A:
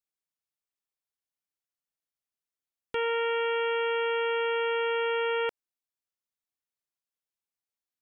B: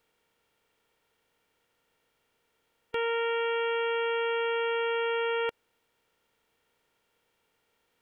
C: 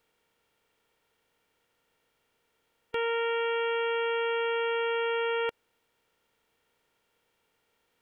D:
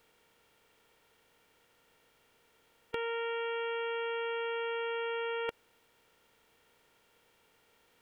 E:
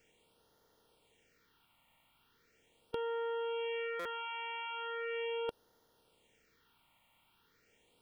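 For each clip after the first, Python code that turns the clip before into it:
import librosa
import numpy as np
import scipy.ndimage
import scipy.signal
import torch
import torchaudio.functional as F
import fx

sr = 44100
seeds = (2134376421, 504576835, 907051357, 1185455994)

y1 = fx.bin_compress(x, sr, power=0.6)
y1 = y1 * librosa.db_to_amplitude(-1.0)
y2 = y1
y3 = fx.over_compress(y2, sr, threshold_db=-33.0, ratio=-0.5)
y4 = fx.phaser_stages(y3, sr, stages=6, low_hz=420.0, high_hz=2500.0, hz=0.39, feedback_pct=0)
y4 = fx.buffer_glitch(y4, sr, at_s=(3.99,), block=256, repeats=10)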